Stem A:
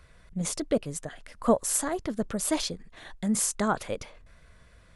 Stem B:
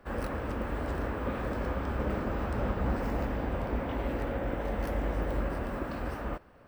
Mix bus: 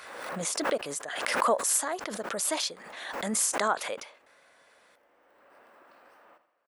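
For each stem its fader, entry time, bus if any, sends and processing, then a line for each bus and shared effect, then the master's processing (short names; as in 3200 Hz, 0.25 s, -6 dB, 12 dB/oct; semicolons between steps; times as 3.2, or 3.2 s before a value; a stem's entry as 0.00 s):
+0.5 dB, 0.00 s, no send, no echo send, low shelf 420 Hz +3 dB
-16.0 dB, 0.00 s, no send, echo send -12 dB, auto duck -21 dB, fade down 1.95 s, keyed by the first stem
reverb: off
echo: feedback echo 80 ms, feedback 44%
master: HPF 640 Hz 12 dB/oct; backwards sustainer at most 37 dB/s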